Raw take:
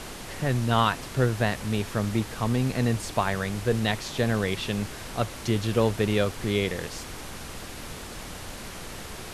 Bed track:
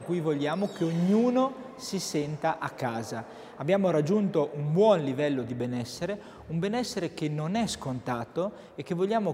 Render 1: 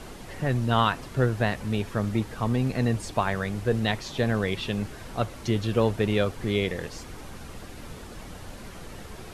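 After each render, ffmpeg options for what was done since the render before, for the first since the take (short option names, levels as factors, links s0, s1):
-af "afftdn=nr=8:nf=-39"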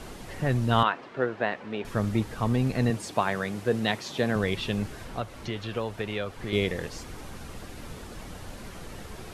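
-filter_complex "[0:a]asettb=1/sr,asplit=3[s0][s1][s2];[s0]atrim=end=0.834[s3];[s1]atrim=start=0.83:end=1.85,asetpts=PTS-STARTPTS,afade=t=in:d=0.004:c=qsin,afade=t=out:st=1.016:d=0.004:c=qsin,highpass=320,lowpass=2700[s4];[s2]atrim=start=1.846[s5];[s3][s4]acrossfade=d=0.004:c1=hsin:c2=qsin[s6];[s6][s5]acrossfade=d=0.004:c1=qsin:c2=hsin,asettb=1/sr,asplit=3[s7][s8][s9];[s7]atrim=end=2.904[s10];[s8]atrim=start=2.9:end=4.36,asetpts=PTS-STARTPTS,afade=t=in:d=0.004:c=qsin,afade=t=out:st=1.456:d=0.004:c=qsin,highpass=150[s11];[s9]atrim=start=4.356[s12];[s10][s11]acrossfade=d=0.004:c1=hsin:c2=qsin[s13];[s13][s12]acrossfade=d=0.004:c1=qsin:c2=hsin,asettb=1/sr,asplit=3[s14][s15][s16];[s14]atrim=end=5.044[s17];[s15]atrim=start=5.04:end=6.53,asetpts=PTS-STARTPTS,afade=t=in:d=0.004:c=qsin,afade=t=out:st=1.486:d=0.004:c=qsin,acrossover=split=560|4300[s18][s19][s20];[s18]acompressor=threshold=0.02:ratio=4[s21];[s19]acompressor=threshold=0.0251:ratio=4[s22];[s20]acompressor=threshold=0.00141:ratio=4[s23];[s21][s22][s23]amix=inputs=3:normalize=0[s24];[s16]atrim=start=6.526[s25];[s17][s24]acrossfade=d=0.004:c1=hsin:c2=qsin[s26];[s26][s25]acrossfade=d=0.004:c1=qsin:c2=hsin"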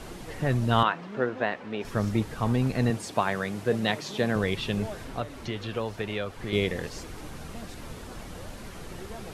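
-filter_complex "[1:a]volume=0.126[s0];[0:a][s0]amix=inputs=2:normalize=0"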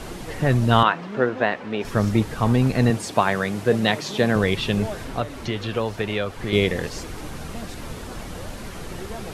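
-af "volume=2.11,alimiter=limit=0.708:level=0:latency=1"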